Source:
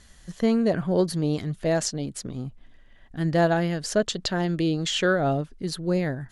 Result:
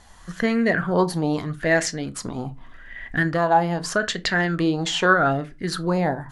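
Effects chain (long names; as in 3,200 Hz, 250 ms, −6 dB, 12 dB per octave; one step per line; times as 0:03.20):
camcorder AGC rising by 7.5 dB per second
on a send at −11 dB: convolution reverb RT60 0.25 s, pre-delay 3 ms
0:03.27–0:04.03: on the sum: downward compressor, threshold −21 dBFS, peak gain reduction 7 dB
auto-filter bell 0.82 Hz 830–2,000 Hz +18 dB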